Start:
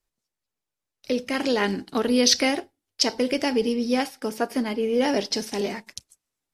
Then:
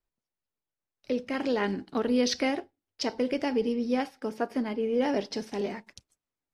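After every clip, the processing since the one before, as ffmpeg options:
-af "lowpass=f=2k:p=1,volume=-4dB"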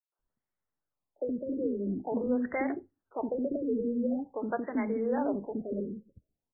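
-filter_complex "[0:a]acompressor=threshold=-31dB:ratio=2,acrossover=split=390|5700[a][b][c];[b]adelay=120[d];[a]adelay=190[e];[e][d][c]amix=inputs=3:normalize=0,afftfilt=real='re*lt(b*sr/1024,550*pow(2300/550,0.5+0.5*sin(2*PI*0.46*pts/sr)))':imag='im*lt(b*sr/1024,550*pow(2300/550,0.5+0.5*sin(2*PI*0.46*pts/sr)))':win_size=1024:overlap=0.75,volume=3.5dB"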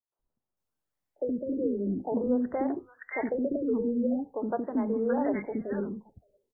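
-filter_complex "[0:a]acrossover=split=1300[a][b];[b]adelay=570[c];[a][c]amix=inputs=2:normalize=0,volume=2.5dB"

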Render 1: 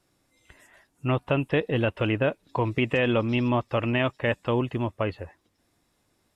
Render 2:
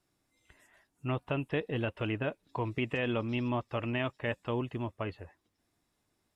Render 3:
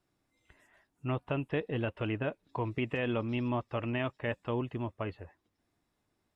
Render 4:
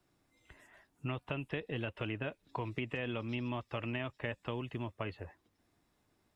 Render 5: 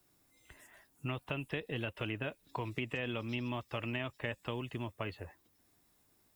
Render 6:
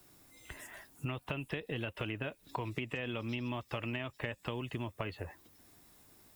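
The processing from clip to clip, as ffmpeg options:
-af "bandreject=f=530:w=12,volume=-8dB"
-af "highshelf=f=4.2k:g=-8"
-filter_complex "[0:a]acrossover=split=91|1900[a][b][c];[a]acompressor=threshold=-56dB:ratio=4[d];[b]acompressor=threshold=-42dB:ratio=4[e];[c]acompressor=threshold=-46dB:ratio=4[f];[d][e][f]amix=inputs=3:normalize=0,volume=4dB"
-af "aemphasis=mode=production:type=50fm"
-af "acompressor=threshold=-47dB:ratio=3,volume=9.5dB"

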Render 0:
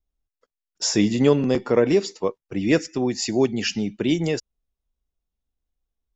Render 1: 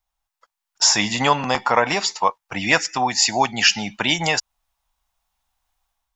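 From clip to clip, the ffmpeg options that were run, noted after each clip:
-filter_complex "[0:a]dynaudnorm=f=490:g=3:m=7.5dB,lowshelf=f=580:t=q:w=3:g=-13.5,asplit=2[a][b];[b]acompressor=threshold=-30dB:ratio=6,volume=-1dB[c];[a][c]amix=inputs=2:normalize=0,volume=3.5dB"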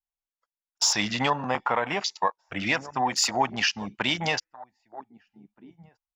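-filter_complex "[0:a]alimiter=limit=-7dB:level=0:latency=1:release=227,asplit=2[a][b];[b]adelay=1574,volume=-14dB,highshelf=f=4k:g=-35.4[c];[a][c]amix=inputs=2:normalize=0,afwtdn=0.0355,volume=-4.5dB"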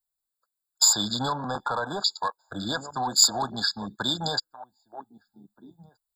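-filter_complex "[0:a]acrossover=split=170|1500|3600[a][b][c][d];[b]asoftclip=type=tanh:threshold=-25dB[e];[a][e][c][d]amix=inputs=4:normalize=0,crystalizer=i=2.5:c=0,afftfilt=real='re*eq(mod(floor(b*sr/1024/1700),2),0)':imag='im*eq(mod(floor(b*sr/1024/1700),2),0)':win_size=1024:overlap=0.75"

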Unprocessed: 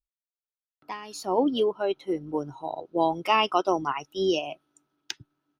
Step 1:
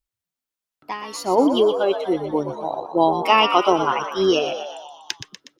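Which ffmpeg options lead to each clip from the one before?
-filter_complex "[0:a]asplit=8[a][b][c][d][e][f][g][h];[b]adelay=121,afreqshift=70,volume=-9dB[i];[c]adelay=242,afreqshift=140,volume=-13.4dB[j];[d]adelay=363,afreqshift=210,volume=-17.9dB[k];[e]adelay=484,afreqshift=280,volume=-22.3dB[l];[f]adelay=605,afreqshift=350,volume=-26.7dB[m];[g]adelay=726,afreqshift=420,volume=-31.2dB[n];[h]adelay=847,afreqshift=490,volume=-35.6dB[o];[a][i][j][k][l][m][n][o]amix=inputs=8:normalize=0,volume=6.5dB"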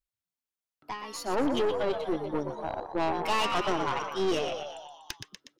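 -af "aeval=exprs='(tanh(8.91*val(0)+0.55)-tanh(0.55))/8.91':c=same,volume=-4.5dB"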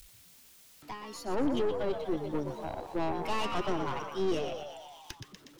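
-filter_complex "[0:a]aeval=exprs='val(0)+0.5*0.00398*sgn(val(0))':c=same,lowshelf=f=400:g=9,acrossover=split=200|2000[a][b][c];[c]acompressor=mode=upward:threshold=-41dB:ratio=2.5[d];[a][b][d]amix=inputs=3:normalize=0,volume=-7.5dB"

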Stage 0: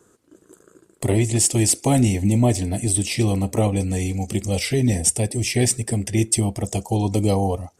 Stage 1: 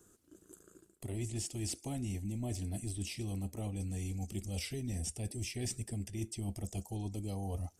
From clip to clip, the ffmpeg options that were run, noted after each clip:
-filter_complex "[0:a]acrossover=split=5100[a][b];[b]acompressor=threshold=-34dB:ratio=4:attack=1:release=60[c];[a][c]amix=inputs=2:normalize=0,equalizer=f=125:t=o:w=1:g=-8,equalizer=f=250:t=o:w=1:g=-5,equalizer=f=500:t=o:w=1:g=-11,equalizer=f=1k:t=o:w=1:g=-10,equalizer=f=2k:t=o:w=1:g=-9,equalizer=f=4k:t=o:w=1:g=-6,equalizer=f=8k:t=o:w=1:g=-4,areverse,acompressor=threshold=-36dB:ratio=10,areverse,volume=1dB"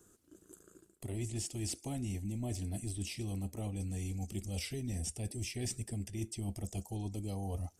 -af anull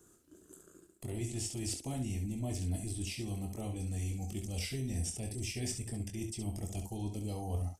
-af "aecho=1:1:23|68:0.501|0.447"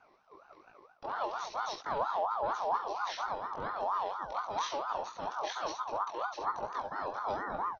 -af "aresample=11025,aresample=44100,flanger=delay=17:depth=6.6:speed=1.2,aeval=exprs='val(0)*sin(2*PI*920*n/s+920*0.25/4.3*sin(2*PI*4.3*n/s))':c=same,volume=8dB"

